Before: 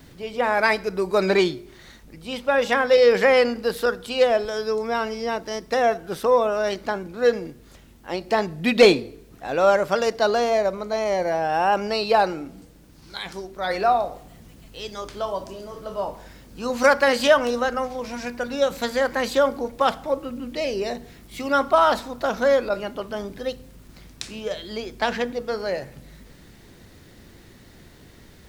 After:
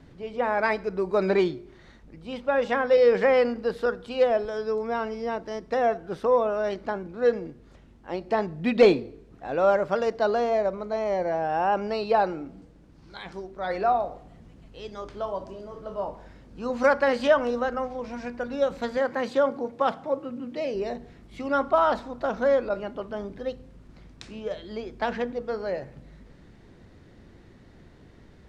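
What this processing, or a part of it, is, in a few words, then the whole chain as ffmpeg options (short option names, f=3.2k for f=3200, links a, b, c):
through cloth: -filter_complex "[0:a]lowpass=7.9k,highshelf=f=2.5k:g=-12.5,asettb=1/sr,asplit=3[a][b][c];[a]atrim=end=18.974[d];[b]atrim=start=18.97:end=20.75,asetpts=PTS-STARTPTS,afade=t=in:d=0.004:c=qsin,afade=t=out:st=1.776:d=0.004:c=qsin,highpass=f=100:w=0.5412,highpass=f=100:w=1.3066[e];[c]atrim=start=20.746[f];[d][e]acrossfade=d=0.004:c1=hsin:c2=qsin[g];[g][f]acrossfade=d=0.004:c1=qsin:c2=hsin,volume=-2.5dB"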